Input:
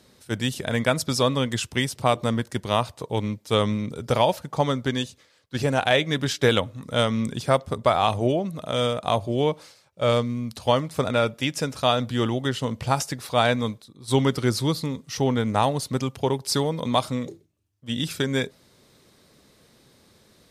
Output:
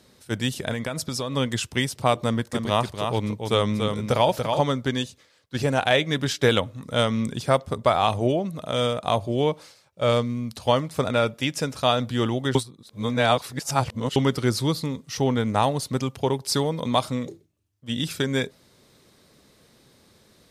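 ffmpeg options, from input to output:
-filter_complex "[0:a]asettb=1/sr,asplit=3[a][b][c];[a]atrim=end=0.724[d];[b]atrim=start=0.72:end=1.35,asetpts=PTS-STARTPTS,afade=t=in:d=0.004:c=qsin,afade=t=out:st=0.626:d=0.004:c=qsin,acompressor=threshold=-24dB:ratio=10:attack=3.2:release=140:knee=1:detection=peak[e];[c]atrim=start=1.346[f];[d][e]acrossfade=d=0.004:c1=hsin:c2=qsin[g];[g][f]acrossfade=d=0.004:c1=qsin:c2=hsin,asettb=1/sr,asplit=3[h][i][j];[h]atrim=end=2.244[k];[i]atrim=start=2.24:end=4.6,asetpts=PTS-STARTPTS,afade=t=in:d=0.004:c=qsin,afade=t=out:st=2.356:d=0.004:c=qsin,aecho=1:1:287:0.531,atrim=end_sample=104076[l];[j]atrim=start=4.596[m];[k][l]acrossfade=d=0.004:c1=hsin:c2=qsin[n];[n][m]acrossfade=d=0.004:c1=qsin:c2=hsin,asplit=3[o][p][q];[o]atrim=end=12.552[r];[p]atrim=start=12.548:end=14.162,asetpts=PTS-STARTPTS,areverse[s];[q]atrim=start=14.158[t];[r][s]acrossfade=d=0.004:c1=hsin:c2=hsin[u];[u][t]acrossfade=d=0.004:c1=hsin:c2=hsin"

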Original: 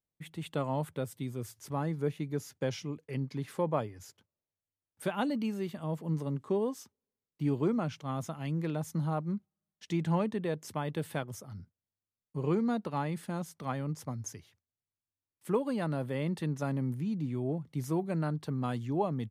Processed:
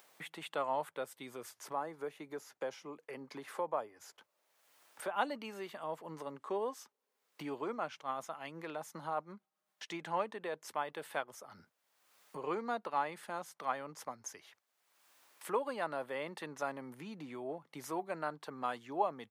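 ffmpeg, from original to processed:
-filter_complex "[0:a]asettb=1/sr,asplit=3[a][b][c];[a]atrim=end=1.494[d];[b]atrim=start=1.49:end=5.16,asetpts=PTS-STARTPTS,afade=t=in:d=0.004:c=qsin,afade=t=out:st=3.666:d=0.004:c=qsin,acrossover=split=190|1400|6400[e][f][g][h];[e]acompressor=threshold=-43dB:ratio=3[i];[f]acompressor=threshold=-31dB:ratio=3[j];[g]acompressor=threshold=-59dB:ratio=3[k];[h]acompressor=threshold=-57dB:ratio=3[l];[i][j][k][l]amix=inputs=4:normalize=0[m];[c]atrim=start=5.156[n];[d][m]acrossfade=d=0.004:c1=hsin:c2=qsin[o];[o][n]acrossfade=d=0.004:c1=qsin:c2=hsin,asettb=1/sr,asplit=3[p][q][r];[p]atrim=end=7.604[s];[q]atrim=start=7.6:end=11.57,asetpts=PTS-STARTPTS,afade=t=in:d=0.004:c=qsin,afade=t=out:st=3.966:d=0.004:c=qsin,tremolo=f=8.1:d=0.28[t];[r]atrim=start=11.566[u];[s][t]acrossfade=d=0.004:c1=hsin:c2=qsin[v];[v][u]acrossfade=d=0.004:c1=qsin:c2=hsin,highpass=830,highshelf=f=2.1k:g=-11.5,acompressor=mode=upward:threshold=-47dB:ratio=2.5,volume=6.5dB"

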